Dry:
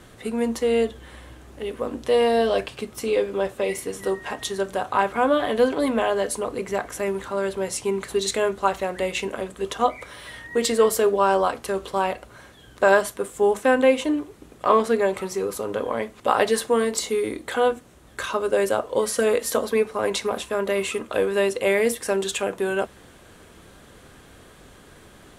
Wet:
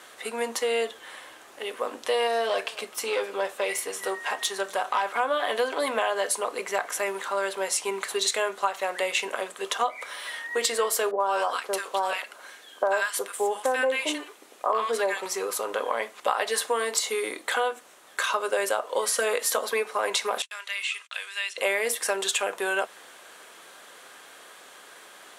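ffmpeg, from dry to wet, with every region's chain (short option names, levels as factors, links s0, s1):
-filter_complex "[0:a]asettb=1/sr,asplit=3[s0][s1][s2];[s0]atrim=end=2.274[s3];[s1]atrim=start=2.27:end=5.2,asetpts=PTS-STARTPTS,afade=t=in:d=0.004:c=qsin,afade=t=out:st=2.926:d=0.004:c=qsin,aeval=exprs='(tanh(6.31*val(0)+0.25)-tanh(0.25))/6.31':c=same,aecho=1:1:260:0.0708,atrim=end_sample=129213[s4];[s2]atrim=start=5.196[s5];[s3][s4]acrossfade=d=0.004:c1=hsin:c2=qsin[s6];[s6][s5]acrossfade=d=0.004:c1=qsin:c2=hsin,asettb=1/sr,asplit=3[s7][s8][s9];[s7]atrim=end=11.114[s10];[s8]atrim=start=11.11:end=15.26,asetpts=PTS-STARTPTS,afade=t=in:d=0.004:c=qsin,afade=t=out:st=4.146:d=0.004:c=qsin,highpass=f=180:w=0.5412,highpass=f=180:w=1.3066,acrossover=split=1200[s11][s12];[s12]adelay=90[s13];[s11][s13]amix=inputs=2:normalize=0,atrim=end_sample=183015[s14];[s9]atrim=start=15.256[s15];[s10][s14]acrossfade=d=0.004:c1=hsin:c2=qsin[s16];[s16][s15]acrossfade=d=0.004:c1=qsin:c2=hsin,asettb=1/sr,asplit=3[s17][s18][s19];[s17]atrim=end=20.424[s20];[s18]atrim=start=20.42:end=21.58,asetpts=PTS-STARTPTS,afade=t=in:d=0.004:c=qsin,afade=t=out:st=1.156:d=0.004:c=qsin,agate=range=0.00794:threshold=0.0112:ratio=16:release=100:detection=peak,acrossover=split=3900[s21][s22];[s22]acompressor=threshold=0.00631:ratio=4:attack=1:release=60[s23];[s21][s23]amix=inputs=2:normalize=0,asuperpass=centerf=4700:order=4:qfactor=0.67[s24];[s19]atrim=start=21.576[s25];[s20][s24]acrossfade=d=0.004:c1=hsin:c2=qsin[s26];[s26][s25]acrossfade=d=0.004:c1=qsin:c2=hsin,highpass=710,acompressor=threshold=0.0501:ratio=5,volume=1.68"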